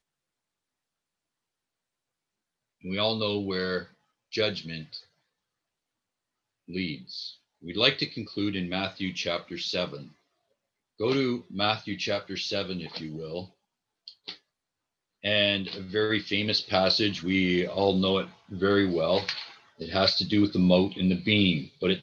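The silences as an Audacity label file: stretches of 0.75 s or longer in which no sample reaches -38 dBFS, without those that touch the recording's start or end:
4.990000	6.690000	silence
10.030000	11.000000	silence
14.350000	15.240000	silence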